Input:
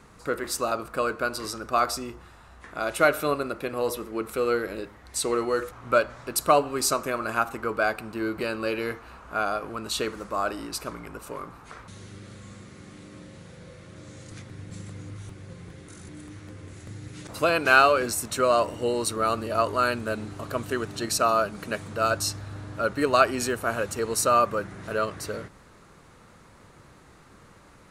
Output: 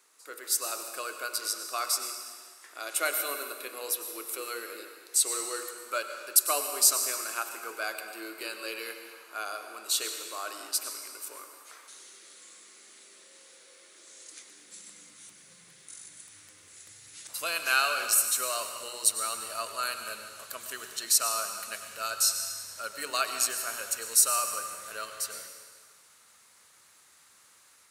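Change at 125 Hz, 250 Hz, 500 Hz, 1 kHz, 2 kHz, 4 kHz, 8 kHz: below −25 dB, −18.5 dB, −14.5 dB, −9.5 dB, −6.5 dB, +1.5 dB, +6.5 dB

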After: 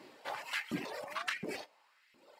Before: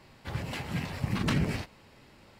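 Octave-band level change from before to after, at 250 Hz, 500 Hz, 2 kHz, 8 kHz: −11.5, −3.5, −1.0, −4.5 decibels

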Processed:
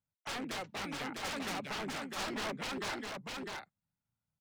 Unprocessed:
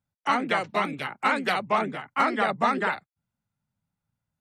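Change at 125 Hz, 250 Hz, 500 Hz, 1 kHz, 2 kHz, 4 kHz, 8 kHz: −8.0 dB, −10.0 dB, −13.0 dB, −16.5 dB, −12.5 dB, −4.0 dB, can't be measured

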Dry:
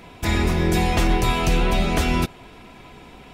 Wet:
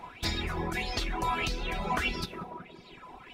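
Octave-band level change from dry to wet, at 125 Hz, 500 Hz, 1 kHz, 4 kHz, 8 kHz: −15.0, −13.0, −7.5, −6.0, −11.5 decibels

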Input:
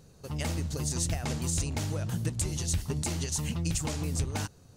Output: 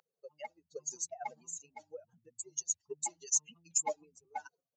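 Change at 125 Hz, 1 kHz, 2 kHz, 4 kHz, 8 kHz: below −35 dB, −0.5 dB, −10.5 dB, −14.5 dB, −0.5 dB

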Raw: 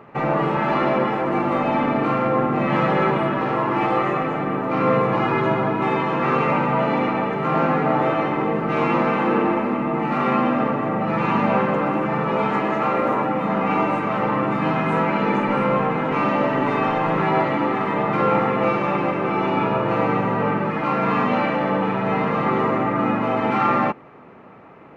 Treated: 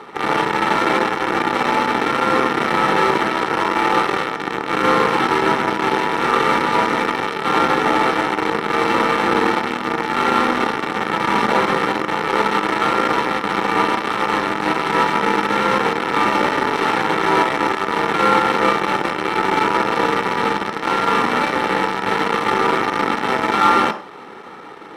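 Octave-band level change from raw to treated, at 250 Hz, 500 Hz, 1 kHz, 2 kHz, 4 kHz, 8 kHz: −1.5 dB, +0.5 dB, +4.0 dB, +7.0 dB, +12.5 dB, can't be measured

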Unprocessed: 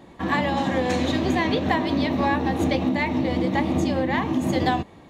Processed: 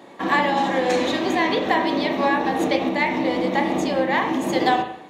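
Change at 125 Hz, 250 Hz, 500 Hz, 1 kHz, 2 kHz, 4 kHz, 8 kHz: −8.0, −0.5, +3.5, +4.5, +4.5, +3.5, +3.0 decibels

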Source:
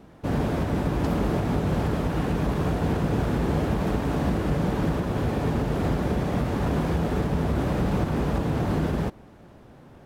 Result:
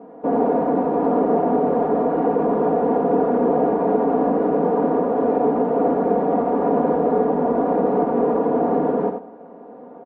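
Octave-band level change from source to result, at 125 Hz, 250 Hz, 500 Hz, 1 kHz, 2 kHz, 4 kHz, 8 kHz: −9.5 dB, +5.0 dB, +12.0 dB, +11.0 dB, −3.5 dB, below −15 dB, below −30 dB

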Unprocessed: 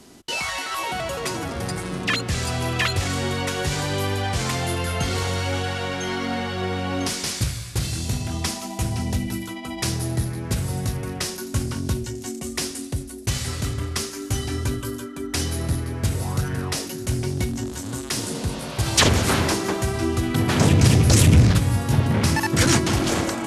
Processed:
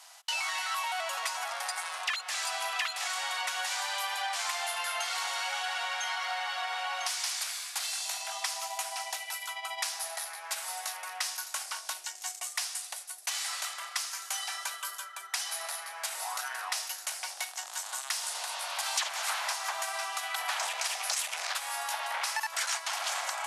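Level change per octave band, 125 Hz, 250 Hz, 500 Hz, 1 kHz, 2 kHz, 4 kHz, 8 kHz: below −40 dB, below −40 dB, −17.5 dB, −4.5 dB, −5.0 dB, −5.5 dB, −5.0 dB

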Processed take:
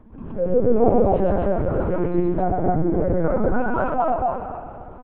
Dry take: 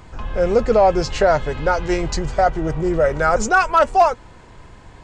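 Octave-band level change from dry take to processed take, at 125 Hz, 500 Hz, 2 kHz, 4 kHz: +1.5 dB, −2.5 dB, −12.5 dB, below −25 dB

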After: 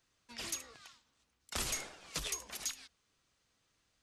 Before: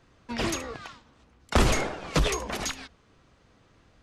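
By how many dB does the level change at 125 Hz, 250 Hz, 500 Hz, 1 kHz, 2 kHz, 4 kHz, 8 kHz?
−23.0, −22.5, −21.5, −18.5, −13.5, −8.5, −4.0 decibels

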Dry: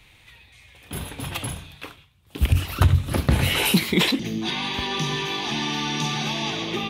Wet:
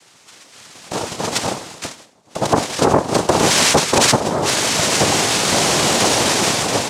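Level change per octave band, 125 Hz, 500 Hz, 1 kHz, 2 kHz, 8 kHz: −2.0, +14.0, +12.0, +7.0, +17.0 decibels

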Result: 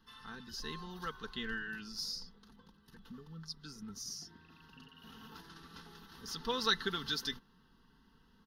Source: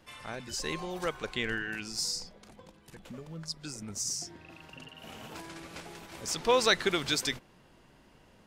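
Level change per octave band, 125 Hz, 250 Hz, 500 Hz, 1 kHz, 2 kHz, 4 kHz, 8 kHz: −7.0, −6.5, −12.5, −7.0, −7.0, −5.0, −12.5 decibels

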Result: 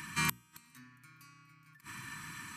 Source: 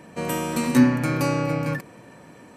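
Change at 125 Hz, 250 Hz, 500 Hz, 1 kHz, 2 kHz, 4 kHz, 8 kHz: −20.5, −27.0, −34.5, −14.0, −8.0, −6.5, −7.5 decibels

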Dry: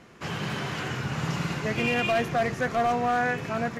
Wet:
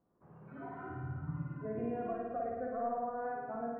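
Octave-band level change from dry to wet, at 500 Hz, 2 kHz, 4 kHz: −10.0 dB, −23.5 dB, below −40 dB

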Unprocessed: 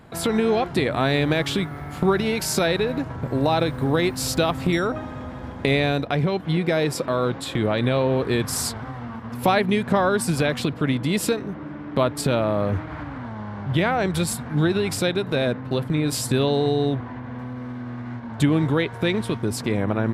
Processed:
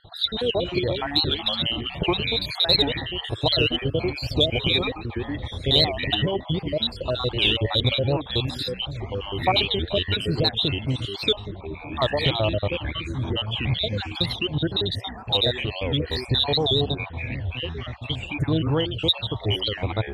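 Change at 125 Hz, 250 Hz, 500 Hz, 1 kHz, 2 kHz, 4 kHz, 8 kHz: −1.0 dB, −6.0 dB, −3.5 dB, −4.5 dB, −2.5 dB, +9.5 dB, below −15 dB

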